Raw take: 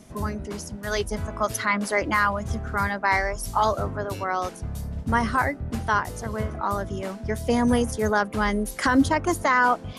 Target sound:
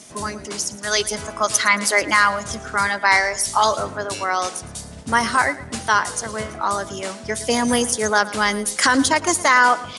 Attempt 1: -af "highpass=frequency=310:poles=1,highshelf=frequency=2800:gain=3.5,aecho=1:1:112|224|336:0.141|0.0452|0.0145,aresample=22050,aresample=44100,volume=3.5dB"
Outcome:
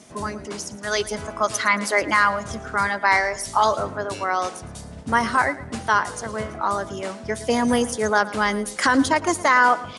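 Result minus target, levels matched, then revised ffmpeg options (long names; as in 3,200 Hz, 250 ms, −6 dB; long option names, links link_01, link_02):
4,000 Hz band −4.0 dB
-af "highpass=frequency=310:poles=1,highshelf=frequency=2800:gain=13.5,aecho=1:1:112|224|336:0.141|0.0452|0.0145,aresample=22050,aresample=44100,volume=3.5dB"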